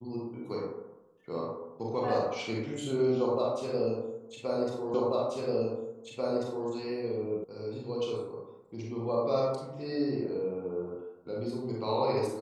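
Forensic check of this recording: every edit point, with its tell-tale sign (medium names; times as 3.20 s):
4.94 s: repeat of the last 1.74 s
7.44 s: sound stops dead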